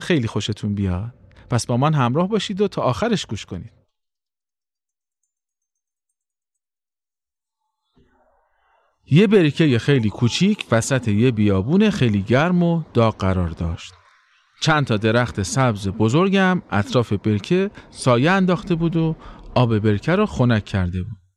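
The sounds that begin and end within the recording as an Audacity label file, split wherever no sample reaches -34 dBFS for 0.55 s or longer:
9.110000	13.900000	sound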